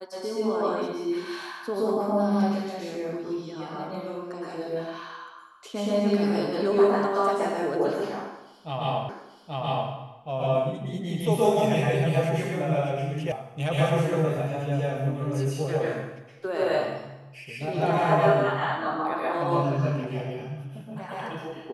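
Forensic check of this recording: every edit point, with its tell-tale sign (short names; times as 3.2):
9.09 repeat of the last 0.83 s
13.32 sound cut off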